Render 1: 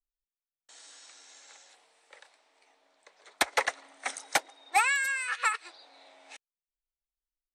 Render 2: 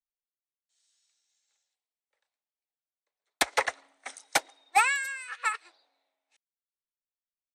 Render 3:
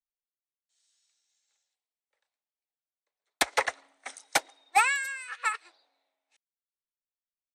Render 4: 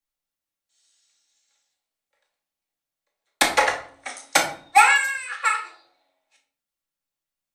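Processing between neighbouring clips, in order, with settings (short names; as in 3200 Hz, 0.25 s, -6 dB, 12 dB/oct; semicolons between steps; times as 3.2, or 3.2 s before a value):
three-band expander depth 100%; gain -6 dB
nothing audible
reverb RT60 0.50 s, pre-delay 4 ms, DRR 0 dB; gain +5 dB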